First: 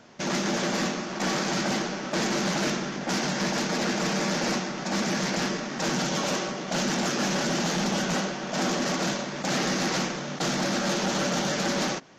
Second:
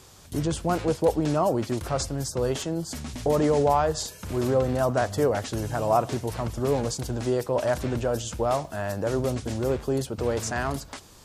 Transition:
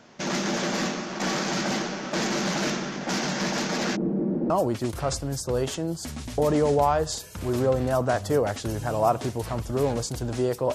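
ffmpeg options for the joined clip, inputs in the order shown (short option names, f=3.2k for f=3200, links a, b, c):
-filter_complex "[0:a]asplit=3[a][b][c];[a]afade=t=out:st=3.95:d=0.02[d];[b]lowpass=f=340:t=q:w=2.1,afade=t=in:st=3.95:d=0.02,afade=t=out:st=4.5:d=0.02[e];[c]afade=t=in:st=4.5:d=0.02[f];[d][e][f]amix=inputs=3:normalize=0,apad=whole_dur=10.74,atrim=end=10.74,atrim=end=4.502[g];[1:a]atrim=start=1.378:end=7.62[h];[g][h]acrossfade=d=0.004:c1=hsin:c2=hsin"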